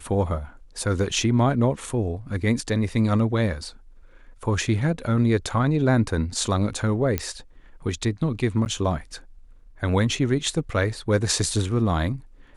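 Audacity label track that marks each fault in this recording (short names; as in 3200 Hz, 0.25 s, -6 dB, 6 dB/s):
7.180000	7.180000	pop -8 dBFS
8.650000	8.660000	gap 9.7 ms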